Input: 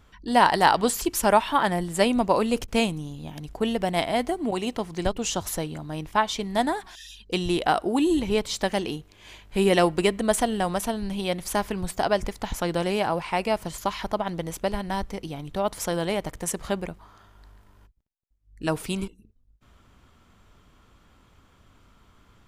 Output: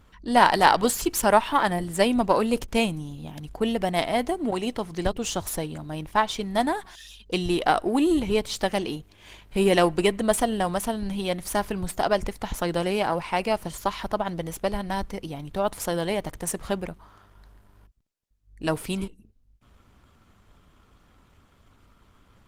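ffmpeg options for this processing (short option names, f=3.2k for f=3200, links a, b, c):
-af "aeval=exprs='if(lt(val(0),0),0.708*val(0),val(0))':c=same,volume=2dB" -ar 48000 -c:a libopus -b:a 24k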